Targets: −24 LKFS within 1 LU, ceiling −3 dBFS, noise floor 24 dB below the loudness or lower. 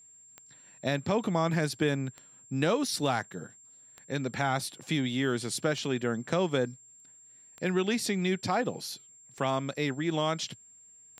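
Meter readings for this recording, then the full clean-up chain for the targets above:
number of clicks 7; interfering tone 7,400 Hz; level of the tone −53 dBFS; integrated loudness −30.5 LKFS; sample peak −13.0 dBFS; target loudness −24.0 LKFS
→ click removal
notch filter 7,400 Hz, Q 30
level +6.5 dB

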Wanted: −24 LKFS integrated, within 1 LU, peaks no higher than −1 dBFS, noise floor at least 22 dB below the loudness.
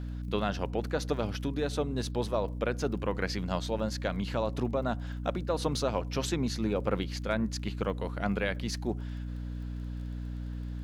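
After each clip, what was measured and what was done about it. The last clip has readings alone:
crackle rate 22 per second; mains hum 60 Hz; hum harmonics up to 300 Hz; level of the hum −34 dBFS; integrated loudness −33.0 LKFS; sample peak −15.0 dBFS; target loudness −24.0 LKFS
→ click removal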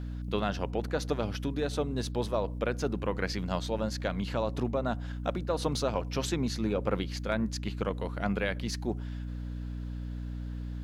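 crackle rate 0.18 per second; mains hum 60 Hz; hum harmonics up to 300 Hz; level of the hum −34 dBFS
→ hum removal 60 Hz, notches 5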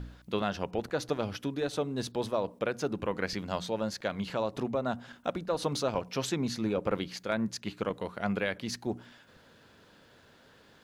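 mains hum none found; integrated loudness −33.5 LKFS; sample peak −16.0 dBFS; target loudness −24.0 LKFS
→ level +9.5 dB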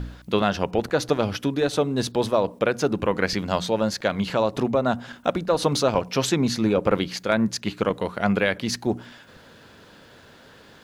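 integrated loudness −24.0 LKFS; sample peak −6.5 dBFS; background noise floor −50 dBFS

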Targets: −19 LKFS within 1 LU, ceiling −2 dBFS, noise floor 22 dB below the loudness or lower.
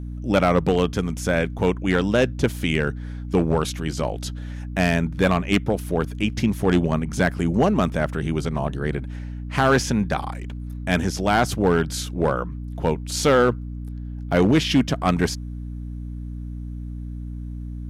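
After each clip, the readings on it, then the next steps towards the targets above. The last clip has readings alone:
share of clipped samples 0.5%; peaks flattened at −10.5 dBFS; mains hum 60 Hz; hum harmonics up to 300 Hz; level of the hum −29 dBFS; integrated loudness −22.5 LKFS; sample peak −10.5 dBFS; target loudness −19.0 LKFS
→ clipped peaks rebuilt −10.5 dBFS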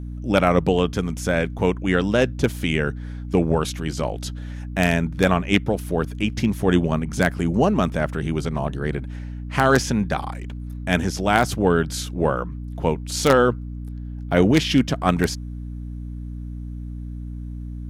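share of clipped samples 0.0%; mains hum 60 Hz; hum harmonics up to 300 Hz; level of the hum −29 dBFS
→ mains-hum notches 60/120/180/240/300 Hz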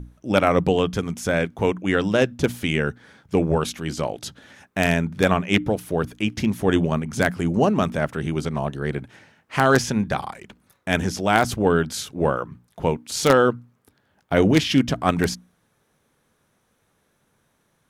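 mains hum none found; integrated loudness −22.0 LKFS; sample peak −1.0 dBFS; target loudness −19.0 LKFS
→ level +3 dB
brickwall limiter −2 dBFS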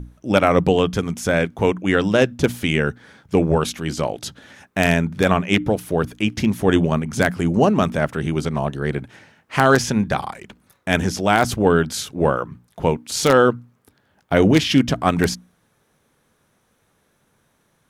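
integrated loudness −19.5 LKFS; sample peak −2.0 dBFS; background noise floor −65 dBFS

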